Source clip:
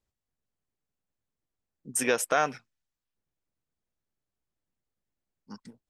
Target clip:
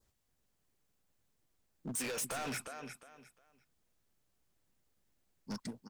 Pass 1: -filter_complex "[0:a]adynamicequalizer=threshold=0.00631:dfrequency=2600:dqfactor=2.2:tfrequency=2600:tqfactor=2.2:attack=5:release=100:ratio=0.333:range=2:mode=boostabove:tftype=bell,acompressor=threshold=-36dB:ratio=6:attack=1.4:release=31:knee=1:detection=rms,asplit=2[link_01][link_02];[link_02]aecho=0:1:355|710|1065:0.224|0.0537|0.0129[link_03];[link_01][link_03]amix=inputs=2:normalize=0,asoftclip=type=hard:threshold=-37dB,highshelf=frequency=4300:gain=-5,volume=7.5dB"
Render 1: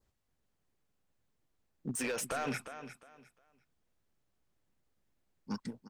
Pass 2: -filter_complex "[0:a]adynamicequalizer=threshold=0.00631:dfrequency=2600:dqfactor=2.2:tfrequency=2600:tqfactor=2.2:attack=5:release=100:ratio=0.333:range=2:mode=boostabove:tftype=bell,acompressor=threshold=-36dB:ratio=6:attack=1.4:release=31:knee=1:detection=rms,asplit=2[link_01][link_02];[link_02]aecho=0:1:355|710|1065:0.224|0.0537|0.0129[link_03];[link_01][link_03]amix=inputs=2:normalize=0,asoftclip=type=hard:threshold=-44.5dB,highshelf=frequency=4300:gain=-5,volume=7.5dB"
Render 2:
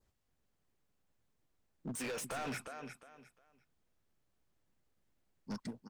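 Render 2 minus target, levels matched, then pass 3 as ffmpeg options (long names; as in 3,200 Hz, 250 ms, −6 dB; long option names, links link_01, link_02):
8,000 Hz band −4.0 dB
-filter_complex "[0:a]adynamicequalizer=threshold=0.00631:dfrequency=2600:dqfactor=2.2:tfrequency=2600:tqfactor=2.2:attack=5:release=100:ratio=0.333:range=2:mode=boostabove:tftype=bell,acompressor=threshold=-36dB:ratio=6:attack=1.4:release=31:knee=1:detection=rms,asplit=2[link_01][link_02];[link_02]aecho=0:1:355|710|1065:0.224|0.0537|0.0129[link_03];[link_01][link_03]amix=inputs=2:normalize=0,asoftclip=type=hard:threshold=-44.5dB,highshelf=frequency=4300:gain=3,volume=7.5dB"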